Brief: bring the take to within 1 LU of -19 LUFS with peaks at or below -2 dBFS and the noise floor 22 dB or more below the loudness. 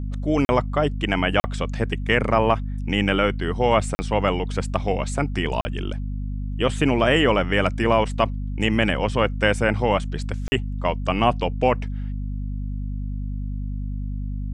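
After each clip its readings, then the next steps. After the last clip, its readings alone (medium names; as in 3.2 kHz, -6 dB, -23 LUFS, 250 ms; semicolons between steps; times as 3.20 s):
dropouts 5; longest dropout 40 ms; hum 50 Hz; highest harmonic 250 Hz; hum level -25 dBFS; loudness -23.0 LUFS; peak level -4.0 dBFS; loudness target -19.0 LUFS
-> interpolate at 0.45/1.40/3.95/5.61/10.48 s, 40 ms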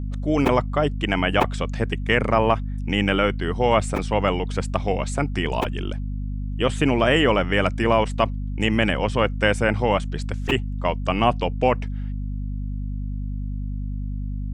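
dropouts 0; hum 50 Hz; highest harmonic 250 Hz; hum level -25 dBFS
-> de-hum 50 Hz, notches 5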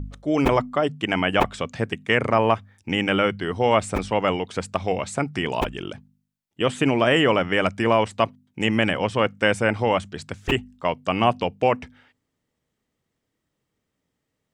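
hum not found; loudness -22.5 LUFS; peak level -4.5 dBFS; loudness target -19.0 LUFS
-> trim +3.5 dB; peak limiter -2 dBFS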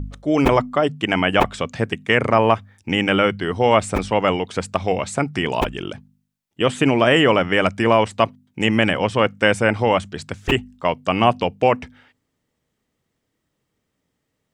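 loudness -19.0 LUFS; peak level -2.0 dBFS; noise floor -75 dBFS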